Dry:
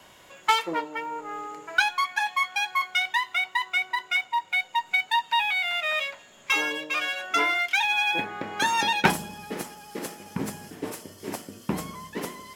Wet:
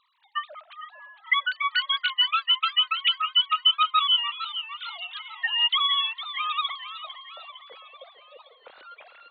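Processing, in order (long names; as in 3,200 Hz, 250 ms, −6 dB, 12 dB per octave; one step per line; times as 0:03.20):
three sine waves on the formant tracks
wrong playback speed 33 rpm record played at 45 rpm
feedback echo with a swinging delay time 453 ms, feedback 56%, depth 120 cents, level −12.5 dB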